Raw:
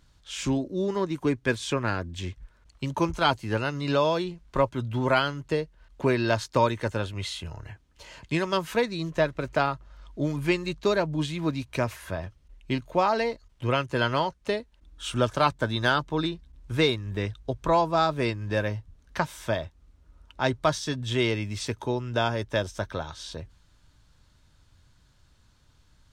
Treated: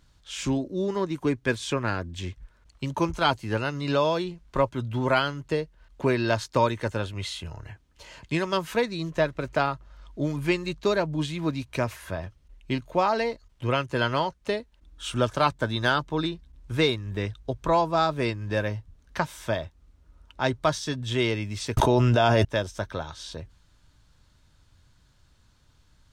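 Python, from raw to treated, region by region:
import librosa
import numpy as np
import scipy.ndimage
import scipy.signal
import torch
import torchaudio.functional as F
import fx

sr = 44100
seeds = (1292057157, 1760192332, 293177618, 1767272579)

y = fx.chain(x, sr, fx.small_body(hz=(660.0, 2800.0), ring_ms=85, db=13),
    fx.env_flatten(amount_pct=100), at=(21.77, 22.45))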